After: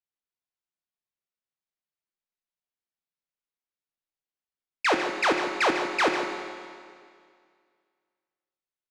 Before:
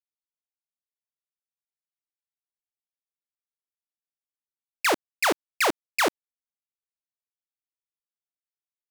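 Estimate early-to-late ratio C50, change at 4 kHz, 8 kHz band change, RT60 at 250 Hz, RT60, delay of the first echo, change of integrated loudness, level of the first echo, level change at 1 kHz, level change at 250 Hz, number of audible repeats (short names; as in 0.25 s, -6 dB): 3.5 dB, -1.0 dB, -7.5 dB, 2.1 s, 2.1 s, 0.152 s, 0.0 dB, -10.0 dB, +1.5 dB, +2.5 dB, 1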